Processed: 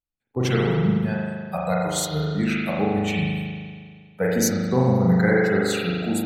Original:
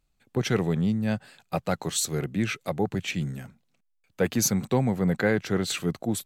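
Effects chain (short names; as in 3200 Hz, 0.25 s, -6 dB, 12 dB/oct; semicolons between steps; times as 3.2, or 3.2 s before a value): spectral noise reduction 22 dB; reverb RT60 1.9 s, pre-delay 39 ms, DRR -4.5 dB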